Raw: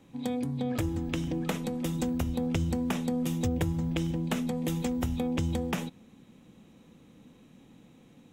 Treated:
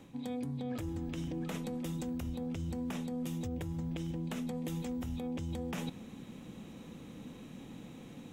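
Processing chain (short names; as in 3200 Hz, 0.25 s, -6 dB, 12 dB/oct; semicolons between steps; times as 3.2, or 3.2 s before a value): limiter -23.5 dBFS, peak gain reduction 7.5 dB; reverse; compressor 4:1, threshold -45 dBFS, peak gain reduction 14.5 dB; reverse; gain +7 dB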